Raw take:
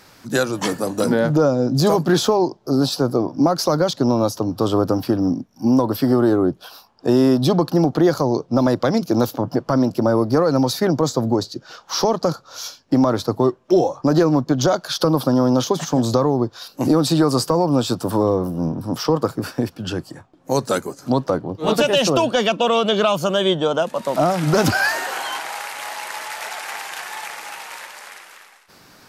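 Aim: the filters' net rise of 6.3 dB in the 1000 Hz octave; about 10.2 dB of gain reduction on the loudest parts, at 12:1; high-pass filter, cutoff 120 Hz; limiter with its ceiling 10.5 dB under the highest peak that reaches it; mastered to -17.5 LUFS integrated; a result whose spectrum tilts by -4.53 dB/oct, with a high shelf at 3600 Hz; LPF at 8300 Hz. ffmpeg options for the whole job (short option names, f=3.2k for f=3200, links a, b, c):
-af "highpass=120,lowpass=8.3k,equalizer=f=1k:t=o:g=8.5,highshelf=f=3.6k:g=-5.5,acompressor=threshold=-20dB:ratio=12,volume=10.5dB,alimiter=limit=-6.5dB:level=0:latency=1"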